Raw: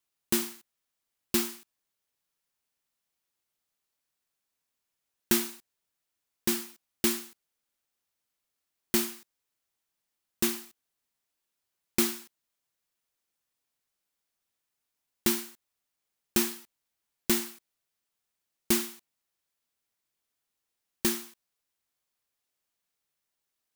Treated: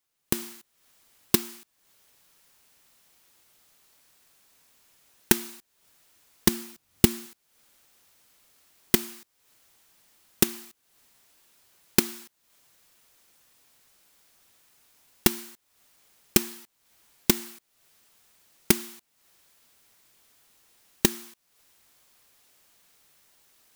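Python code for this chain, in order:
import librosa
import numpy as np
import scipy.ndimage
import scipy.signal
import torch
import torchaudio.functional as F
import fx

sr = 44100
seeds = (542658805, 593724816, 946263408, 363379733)

y = fx.recorder_agc(x, sr, target_db=-16.0, rise_db_per_s=58.0, max_gain_db=30)
y = fx.quant_dither(y, sr, seeds[0], bits=12, dither='triangular')
y = fx.peak_eq(y, sr, hz=88.0, db=12.0, octaves=2.6, at=(6.48, 7.26))
y = y * librosa.db_to_amplitude(-8.5)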